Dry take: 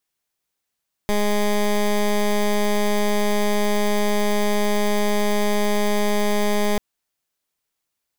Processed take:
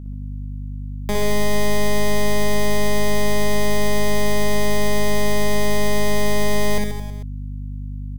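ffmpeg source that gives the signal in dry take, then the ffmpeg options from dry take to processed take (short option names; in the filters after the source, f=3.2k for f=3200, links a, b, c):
-f lavfi -i "aevalsrc='0.112*(2*lt(mod(207*t,1),0.15)-1)':d=5.69:s=44100"
-filter_complex "[0:a]acrossover=split=490|3000[a][b][c];[b]acompressor=threshold=-26dB:ratio=6[d];[a][d][c]amix=inputs=3:normalize=0,aeval=exprs='val(0)+0.0251*(sin(2*PI*50*n/s)+sin(2*PI*2*50*n/s)/2+sin(2*PI*3*50*n/s)/3+sin(2*PI*4*50*n/s)/4+sin(2*PI*5*50*n/s)/5)':c=same,asplit=2[e][f];[f]aecho=0:1:60|132|218.4|322.1|446.5:0.631|0.398|0.251|0.158|0.1[g];[e][g]amix=inputs=2:normalize=0"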